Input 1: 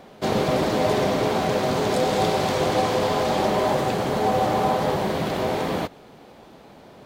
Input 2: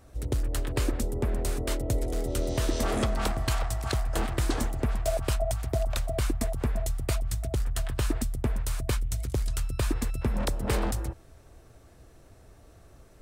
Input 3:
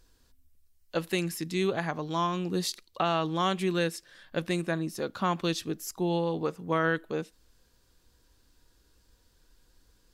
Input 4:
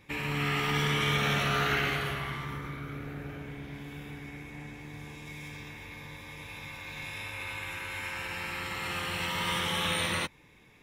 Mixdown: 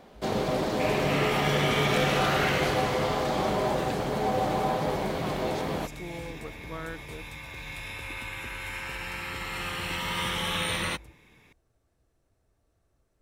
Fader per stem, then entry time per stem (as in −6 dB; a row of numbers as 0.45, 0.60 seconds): −6.0, −18.5, −12.0, +0.5 decibels; 0.00, 0.00, 0.00, 0.70 seconds